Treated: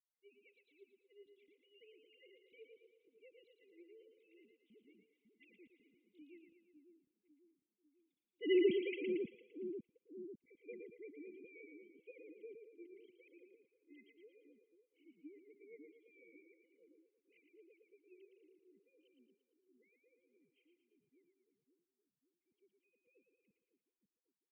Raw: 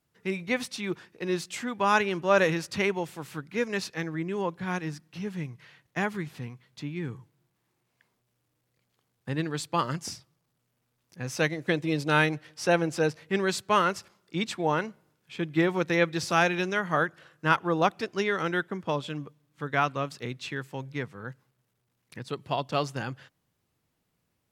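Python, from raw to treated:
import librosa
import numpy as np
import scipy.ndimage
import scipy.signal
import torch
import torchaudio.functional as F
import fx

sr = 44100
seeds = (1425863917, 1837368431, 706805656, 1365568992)

p1 = fx.sine_speech(x, sr)
p2 = fx.doppler_pass(p1, sr, speed_mps=32, closest_m=2.1, pass_at_s=8.63)
p3 = fx.brickwall_bandstop(p2, sr, low_hz=520.0, high_hz=2000.0)
p4 = p3 + fx.echo_split(p3, sr, split_hz=360.0, low_ms=548, high_ms=114, feedback_pct=52, wet_db=-5.0, dry=0)
y = p4 * 10.0 ** (5.0 / 20.0)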